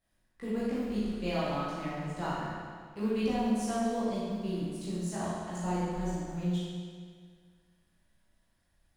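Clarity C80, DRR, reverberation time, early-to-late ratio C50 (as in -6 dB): -1.0 dB, -11.0 dB, 1.9 s, -3.5 dB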